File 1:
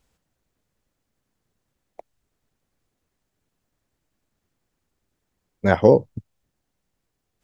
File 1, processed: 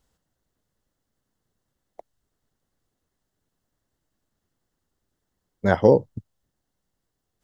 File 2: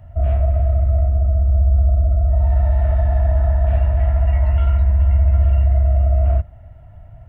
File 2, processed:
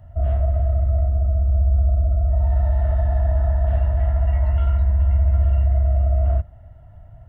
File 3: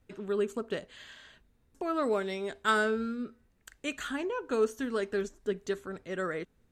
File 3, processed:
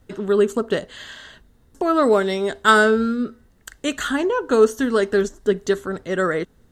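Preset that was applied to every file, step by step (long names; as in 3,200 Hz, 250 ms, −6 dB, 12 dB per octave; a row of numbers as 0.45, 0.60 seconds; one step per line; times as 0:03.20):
parametric band 2,400 Hz −11.5 dB 0.2 octaves
loudness normalisation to −20 LKFS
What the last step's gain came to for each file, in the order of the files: −1.5, −3.0, +13.0 decibels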